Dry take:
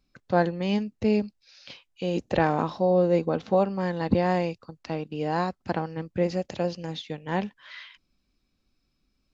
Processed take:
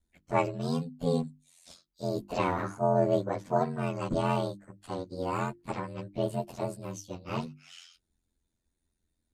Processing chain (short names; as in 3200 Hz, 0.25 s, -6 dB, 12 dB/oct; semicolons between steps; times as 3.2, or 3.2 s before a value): inharmonic rescaling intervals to 120%; ring modulator 43 Hz; notches 50/100/150/200/250/300/350 Hz